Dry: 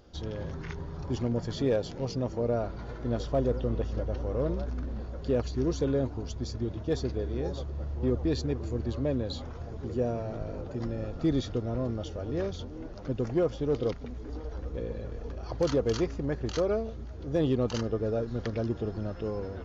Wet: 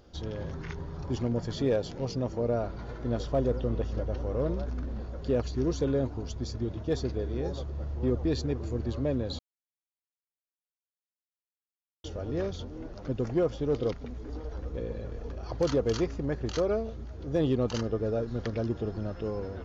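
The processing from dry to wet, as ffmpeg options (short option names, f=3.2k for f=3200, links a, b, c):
-filter_complex "[0:a]asplit=3[a][b][c];[a]atrim=end=9.39,asetpts=PTS-STARTPTS,afade=t=out:st=9.386:d=0.004:c=hsin[d];[b]atrim=start=9.39:end=12.04,asetpts=PTS-STARTPTS,volume=0[e];[c]atrim=start=12.04,asetpts=PTS-STARTPTS,afade=t=in:d=0.004:c=hsin[f];[d][e][f]concat=n=3:v=0:a=1"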